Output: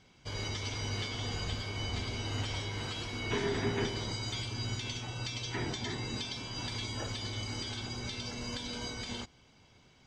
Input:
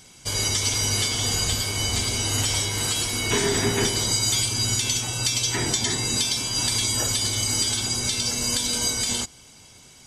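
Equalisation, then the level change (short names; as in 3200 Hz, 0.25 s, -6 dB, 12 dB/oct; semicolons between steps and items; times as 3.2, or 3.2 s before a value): air absorption 210 m; -8.0 dB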